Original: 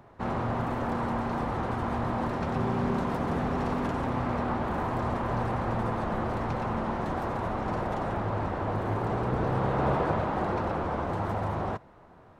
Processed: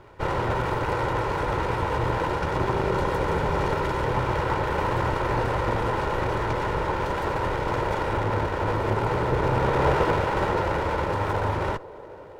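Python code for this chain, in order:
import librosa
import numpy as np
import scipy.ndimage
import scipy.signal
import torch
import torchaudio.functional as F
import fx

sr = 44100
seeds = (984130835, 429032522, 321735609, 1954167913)

y = fx.lower_of_two(x, sr, delay_ms=2.1)
y = fx.echo_banded(y, sr, ms=505, feedback_pct=83, hz=480.0, wet_db=-19)
y = F.gain(torch.from_numpy(y), 6.5).numpy()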